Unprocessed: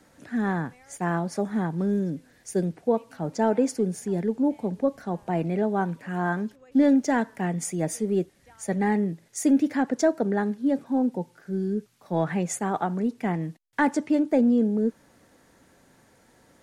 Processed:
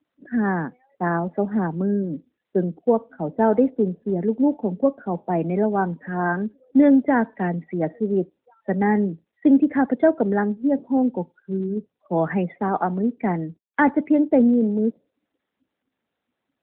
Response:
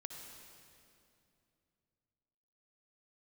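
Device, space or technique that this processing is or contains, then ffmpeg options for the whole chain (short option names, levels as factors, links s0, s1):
mobile call with aggressive noise cancelling: -af "highpass=f=170:w=0.5412,highpass=f=170:w=1.3066,afftdn=nr=35:nf=-41,volume=1.78" -ar 8000 -c:a libopencore_amrnb -b:a 12200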